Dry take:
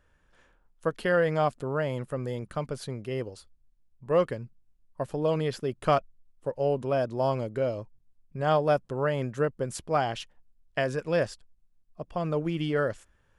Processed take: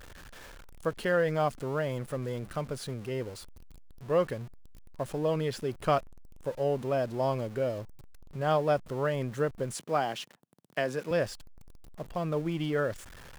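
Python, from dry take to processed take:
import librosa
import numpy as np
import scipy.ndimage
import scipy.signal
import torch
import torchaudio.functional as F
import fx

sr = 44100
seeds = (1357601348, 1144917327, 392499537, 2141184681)

y = x + 0.5 * 10.0 ** (-40.0 / 20.0) * np.sign(x)
y = fx.highpass(y, sr, hz=150.0, slope=24, at=(9.74, 11.11))
y = y * 10.0 ** (-3.0 / 20.0)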